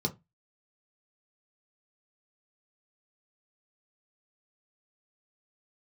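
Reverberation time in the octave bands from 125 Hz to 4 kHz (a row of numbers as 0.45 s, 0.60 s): 0.30 s, 0.25 s, 0.20 s, 0.20 s, 0.20 s, 0.15 s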